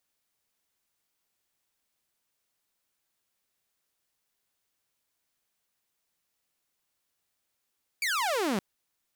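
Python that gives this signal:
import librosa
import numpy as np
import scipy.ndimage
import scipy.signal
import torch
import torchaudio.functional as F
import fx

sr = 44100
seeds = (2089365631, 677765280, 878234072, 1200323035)

y = fx.laser_zap(sr, level_db=-23.5, start_hz=2400.0, end_hz=180.0, length_s=0.57, wave='saw')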